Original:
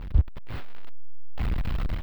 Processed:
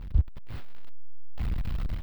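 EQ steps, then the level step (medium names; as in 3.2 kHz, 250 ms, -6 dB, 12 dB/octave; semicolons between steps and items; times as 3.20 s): tone controls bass +5 dB, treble +6 dB; -7.5 dB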